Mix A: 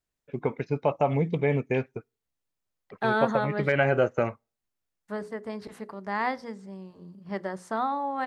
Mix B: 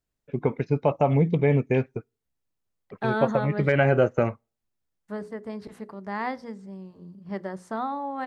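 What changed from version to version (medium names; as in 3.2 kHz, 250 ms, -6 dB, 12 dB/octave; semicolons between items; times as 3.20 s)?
second voice -3.5 dB; master: add bass shelf 410 Hz +6.5 dB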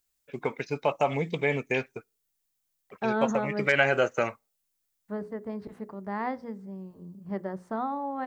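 first voice: add tilt EQ +4.5 dB/octave; second voice: add treble shelf 2.3 kHz -12 dB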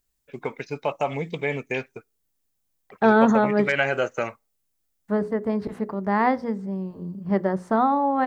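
second voice +11.0 dB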